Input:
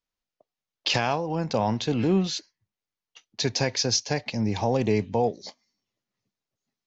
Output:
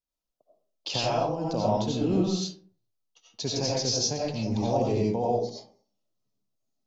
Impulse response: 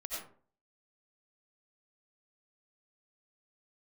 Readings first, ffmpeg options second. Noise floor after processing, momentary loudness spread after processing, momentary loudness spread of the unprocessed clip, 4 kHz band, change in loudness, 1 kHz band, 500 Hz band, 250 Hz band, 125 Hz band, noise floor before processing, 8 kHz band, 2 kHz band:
-85 dBFS, 9 LU, 8 LU, -2.5 dB, -1.5 dB, -1.5 dB, -0.5 dB, -1.5 dB, -2.0 dB, under -85 dBFS, n/a, -10.0 dB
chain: -filter_complex "[0:a]equalizer=f=1.9k:w=1.4:g=-14.5[a];[1:a]atrim=start_sample=2205[b];[a][b]afir=irnorm=-1:irlink=0"

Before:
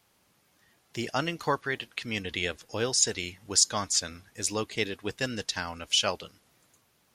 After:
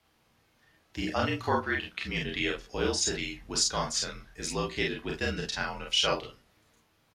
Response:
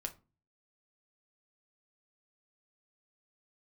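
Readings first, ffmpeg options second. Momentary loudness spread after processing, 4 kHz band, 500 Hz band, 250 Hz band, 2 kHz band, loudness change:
8 LU, -1.0 dB, +0.5 dB, +1.5 dB, +1.0 dB, -1.5 dB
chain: -filter_complex "[0:a]aecho=1:1:33|47:0.708|0.668,asplit=2[a][b];[1:a]atrim=start_sample=2205,lowpass=5.5k[c];[b][c]afir=irnorm=-1:irlink=0,volume=4.5dB[d];[a][d]amix=inputs=2:normalize=0,afreqshift=-47,volume=-9dB"

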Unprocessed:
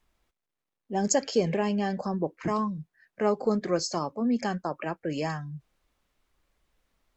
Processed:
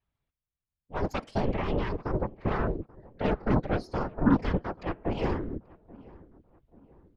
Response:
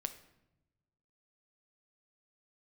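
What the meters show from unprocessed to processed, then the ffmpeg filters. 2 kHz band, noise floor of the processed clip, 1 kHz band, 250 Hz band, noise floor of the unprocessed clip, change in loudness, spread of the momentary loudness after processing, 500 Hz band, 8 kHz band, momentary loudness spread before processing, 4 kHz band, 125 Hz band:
0.0 dB, under -85 dBFS, -2.0 dB, -0.5 dB, under -85 dBFS, -1.5 dB, 10 LU, -3.5 dB, n/a, 9 LU, -8.0 dB, +4.0 dB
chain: -filter_complex "[0:a]lowpass=f=4k:w=0.5412,lowpass=f=4k:w=1.3066,bandreject=f=112.3:t=h:w=4,bandreject=f=224.6:t=h:w=4,bandreject=f=336.9:t=h:w=4,bandreject=f=449.2:t=h:w=4,bandreject=f=561.5:t=h:w=4,bandreject=f=673.8:t=h:w=4,bandreject=f=786.1:t=h:w=4,bandreject=f=898.4:t=h:w=4,bandreject=f=1.0107k:t=h:w=4,bandreject=f=1.123k:t=h:w=4,bandreject=f=1.2353k:t=h:w=4,bandreject=f=1.3476k:t=h:w=4,bandreject=f=1.4599k:t=h:w=4,bandreject=f=1.5722k:t=h:w=4,bandreject=f=1.6845k:t=h:w=4,bandreject=f=1.7968k:t=h:w=4,bandreject=f=1.9091k:t=h:w=4,bandreject=f=2.0214k:t=h:w=4,bandreject=f=2.1337k:t=h:w=4,bandreject=f=2.246k:t=h:w=4,bandreject=f=2.3583k:t=h:w=4,bandreject=f=2.4706k:t=h:w=4,bandreject=f=2.5829k:t=h:w=4,bandreject=f=2.6952k:t=h:w=4,bandreject=f=2.8075k:t=h:w=4,bandreject=f=2.9198k:t=h:w=4,bandreject=f=3.0321k:t=h:w=4,bandreject=f=3.1444k:t=h:w=4,bandreject=f=3.2567k:t=h:w=4,bandreject=f=3.369k:t=h:w=4,bandreject=f=3.4813k:t=h:w=4,bandreject=f=3.5936k:t=h:w=4,bandreject=f=3.7059k:t=h:w=4,bandreject=f=3.8182k:t=h:w=4,bandreject=f=3.9305k:t=h:w=4,bandreject=f=4.0428k:t=h:w=4,bandreject=f=4.1551k:t=h:w=4,asubboost=boost=8:cutoff=210,aeval=exprs='0.316*(cos(1*acos(clip(val(0)/0.316,-1,1)))-cos(1*PI/2))+0.0398*(cos(3*acos(clip(val(0)/0.316,-1,1)))-cos(3*PI/2))+0.0708*(cos(6*acos(clip(val(0)/0.316,-1,1)))-cos(6*PI/2))+0.0501*(cos(7*acos(clip(val(0)/0.316,-1,1)))-cos(7*PI/2))':c=same,afftfilt=real='hypot(re,im)*cos(2*PI*random(0))':imag='hypot(re,im)*sin(2*PI*random(1))':win_size=512:overlap=0.75,asplit=2[a][b];[b]adelay=834,lowpass=f=1.4k:p=1,volume=-22dB,asplit=2[c][d];[d]adelay=834,lowpass=f=1.4k:p=1,volume=0.46,asplit=2[e][f];[f]adelay=834,lowpass=f=1.4k:p=1,volume=0.46[g];[c][e][g]amix=inputs=3:normalize=0[h];[a][h]amix=inputs=2:normalize=0"

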